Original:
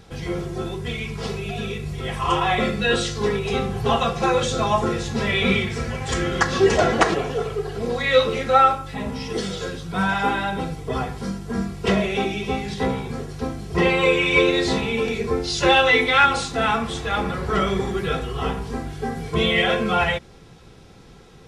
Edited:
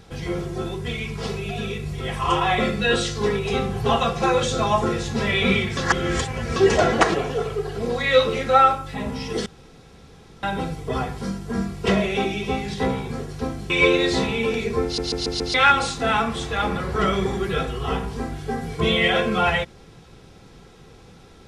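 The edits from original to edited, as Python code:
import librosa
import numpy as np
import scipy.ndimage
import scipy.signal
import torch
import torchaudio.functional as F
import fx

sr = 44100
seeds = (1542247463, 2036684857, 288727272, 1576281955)

y = fx.edit(x, sr, fx.reverse_span(start_s=5.77, length_s=0.79),
    fx.room_tone_fill(start_s=9.46, length_s=0.97),
    fx.cut(start_s=13.7, length_s=0.54),
    fx.stutter_over(start_s=15.38, slice_s=0.14, count=5), tone=tone)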